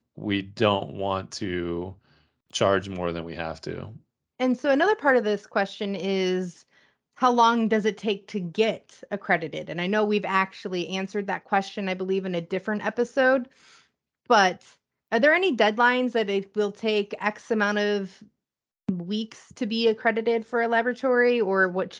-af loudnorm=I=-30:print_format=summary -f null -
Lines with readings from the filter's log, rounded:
Input Integrated:    -24.6 LUFS
Input True Peak:      -6.2 dBTP
Input LRA:             4.7 LU
Input Threshold:     -35.2 LUFS